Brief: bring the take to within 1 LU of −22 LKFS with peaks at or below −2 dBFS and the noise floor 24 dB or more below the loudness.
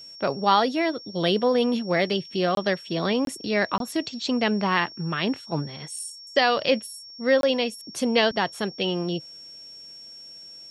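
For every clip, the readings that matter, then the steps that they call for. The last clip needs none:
number of dropouts 4; longest dropout 22 ms; interfering tone 5,500 Hz; level of the tone −41 dBFS; integrated loudness −24.5 LKFS; sample peak −6.5 dBFS; target loudness −22.0 LKFS
→ repair the gap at 0:02.55/0:03.25/0:03.78/0:07.41, 22 ms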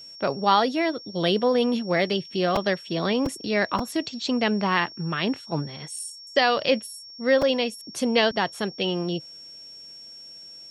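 number of dropouts 0; interfering tone 5,500 Hz; level of the tone −41 dBFS
→ notch filter 5,500 Hz, Q 30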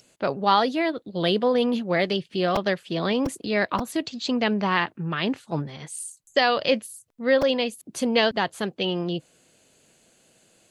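interfering tone none found; integrated loudness −24.5 LKFS; sample peak −6.5 dBFS; target loudness −22.0 LKFS
→ level +2.5 dB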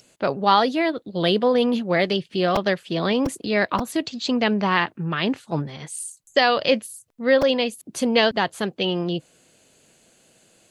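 integrated loudness −22.0 LKFS; sample peak −4.0 dBFS; background noise floor −61 dBFS

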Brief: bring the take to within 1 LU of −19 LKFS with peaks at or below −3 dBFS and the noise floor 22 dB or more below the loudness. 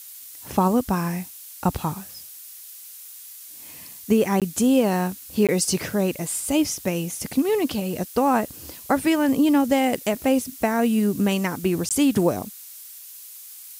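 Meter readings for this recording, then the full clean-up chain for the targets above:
number of dropouts 3; longest dropout 17 ms; background noise floor −42 dBFS; target noise floor −45 dBFS; integrated loudness −22.5 LKFS; sample peak −5.0 dBFS; target loudness −19.0 LKFS
→ repair the gap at 0:04.40/0:05.47/0:11.89, 17 ms
noise reduction from a noise print 6 dB
level +3.5 dB
brickwall limiter −3 dBFS

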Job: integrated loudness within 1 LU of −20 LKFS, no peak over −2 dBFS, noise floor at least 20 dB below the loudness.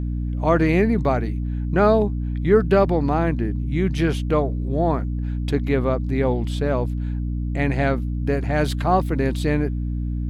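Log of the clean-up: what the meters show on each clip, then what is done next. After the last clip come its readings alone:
mains hum 60 Hz; hum harmonics up to 300 Hz; level of the hum −22 dBFS; integrated loudness −21.5 LKFS; sample peak −4.5 dBFS; target loudness −20.0 LKFS
→ mains-hum notches 60/120/180/240/300 Hz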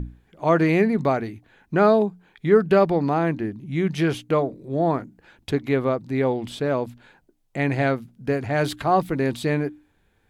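mains hum none found; integrated loudness −22.5 LKFS; sample peak −5.5 dBFS; target loudness −20.0 LKFS
→ level +2.5 dB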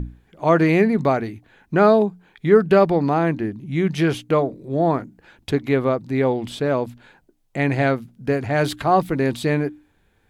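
integrated loudness −20.0 LKFS; sample peak −3.0 dBFS; background noise floor −63 dBFS

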